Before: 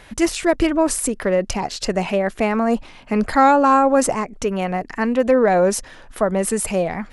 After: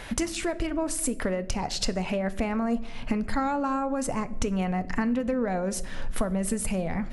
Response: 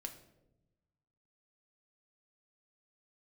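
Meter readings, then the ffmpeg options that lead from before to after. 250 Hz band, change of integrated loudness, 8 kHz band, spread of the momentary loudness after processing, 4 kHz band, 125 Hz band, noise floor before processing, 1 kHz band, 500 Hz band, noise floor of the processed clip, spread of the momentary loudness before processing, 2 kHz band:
−7.0 dB, −10.0 dB, −7.0 dB, 4 LU, −5.0 dB, −3.5 dB, −43 dBFS, −13.0 dB, −12.5 dB, −37 dBFS, 10 LU, −10.0 dB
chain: -filter_complex "[0:a]asubboost=boost=3:cutoff=240,acompressor=threshold=-29dB:ratio=16,asplit=2[link_01][link_02];[1:a]atrim=start_sample=2205[link_03];[link_02][link_03]afir=irnorm=-1:irlink=0,volume=1dB[link_04];[link_01][link_04]amix=inputs=2:normalize=0"

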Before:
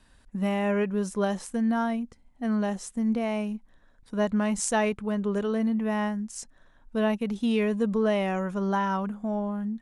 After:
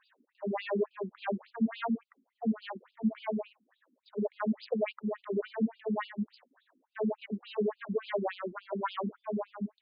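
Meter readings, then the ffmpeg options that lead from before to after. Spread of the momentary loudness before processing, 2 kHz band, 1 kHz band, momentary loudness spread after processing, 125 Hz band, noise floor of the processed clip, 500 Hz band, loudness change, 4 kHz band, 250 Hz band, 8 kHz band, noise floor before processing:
9 LU, −8.5 dB, −8.0 dB, 7 LU, can't be measured, −81 dBFS, −6.0 dB, −7.5 dB, −7.0 dB, −8.0 dB, below −40 dB, −59 dBFS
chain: -filter_complex "[0:a]equalizer=frequency=2700:width=1.5:gain=-3.5,asplit=2[link_01][link_02];[link_02]aeval=exprs='0.0447*(abs(mod(val(0)/0.0447+3,4)-2)-1)':channel_layout=same,volume=-5dB[link_03];[link_01][link_03]amix=inputs=2:normalize=0,afftfilt=real='re*between(b*sr/1024,260*pow(3600/260,0.5+0.5*sin(2*PI*3.5*pts/sr))/1.41,260*pow(3600/260,0.5+0.5*sin(2*PI*3.5*pts/sr))*1.41)':imag='im*between(b*sr/1024,260*pow(3600/260,0.5+0.5*sin(2*PI*3.5*pts/sr))/1.41,260*pow(3600/260,0.5+0.5*sin(2*PI*3.5*pts/sr))*1.41)':win_size=1024:overlap=0.75"

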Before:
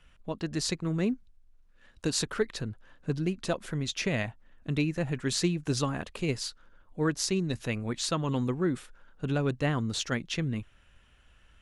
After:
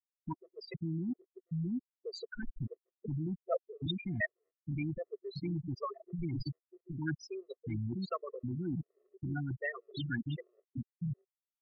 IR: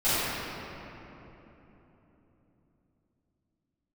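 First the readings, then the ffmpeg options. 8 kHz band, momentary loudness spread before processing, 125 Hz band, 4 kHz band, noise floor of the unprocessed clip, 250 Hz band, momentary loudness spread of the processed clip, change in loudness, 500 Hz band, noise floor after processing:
below −25 dB, 9 LU, −6.0 dB, −13.0 dB, −61 dBFS, −7.5 dB, 9 LU, −8.5 dB, −9.0 dB, below −85 dBFS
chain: -filter_complex "[0:a]asplit=2[link_01][link_02];[link_02]adelay=648,lowpass=frequency=1900:poles=1,volume=-10dB,asplit=2[link_03][link_04];[link_04]adelay=648,lowpass=frequency=1900:poles=1,volume=0.44,asplit=2[link_05][link_06];[link_06]adelay=648,lowpass=frequency=1900:poles=1,volume=0.44,asplit=2[link_07][link_08];[link_08]adelay=648,lowpass=frequency=1900:poles=1,volume=0.44,asplit=2[link_09][link_10];[link_10]adelay=648,lowpass=frequency=1900:poles=1,volume=0.44[link_11];[link_01][link_03][link_05][link_07][link_09][link_11]amix=inputs=6:normalize=0,afftfilt=real='re*gte(hypot(re,im),0.0891)':imag='im*gte(hypot(re,im),0.0891)':win_size=1024:overlap=0.75,lowpass=3400,equalizer=frequency=1900:width_type=o:width=0.35:gain=9.5,areverse,acompressor=threshold=-37dB:ratio=16,areverse,lowshelf=frequency=130:gain=9,acrossover=split=470[link_12][link_13];[link_12]alimiter=level_in=16dB:limit=-24dB:level=0:latency=1:release=24,volume=-16dB[link_14];[link_14][link_13]amix=inputs=2:normalize=0,afftfilt=real='re*gt(sin(2*PI*1.3*pts/sr)*(1-2*mod(floor(b*sr/1024/350),2)),0)':imag='im*gt(sin(2*PI*1.3*pts/sr)*(1-2*mod(floor(b*sr/1024/350),2)),0)':win_size=1024:overlap=0.75,volume=9dB"

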